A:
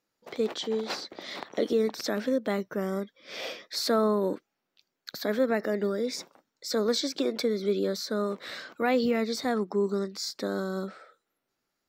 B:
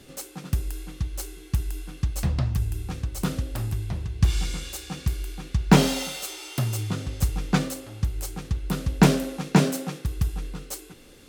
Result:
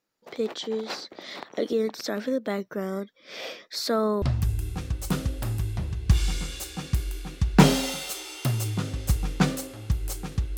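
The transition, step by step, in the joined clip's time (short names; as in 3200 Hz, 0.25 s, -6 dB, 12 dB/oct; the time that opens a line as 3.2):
A
4.22 switch to B from 2.35 s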